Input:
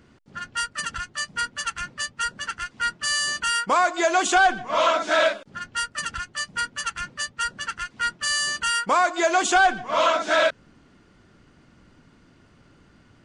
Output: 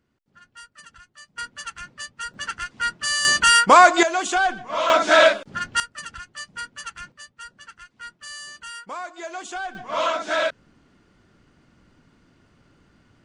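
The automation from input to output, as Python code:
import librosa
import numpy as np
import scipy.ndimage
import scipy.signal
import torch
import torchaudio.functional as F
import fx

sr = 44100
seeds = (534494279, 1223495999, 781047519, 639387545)

y = fx.gain(x, sr, db=fx.steps((0.0, -17.0), (1.38, -6.0), (2.34, 0.5), (3.25, 9.0), (4.03, -3.0), (4.9, 6.0), (5.8, -6.5), (7.12, -13.5), (9.75, -3.0)))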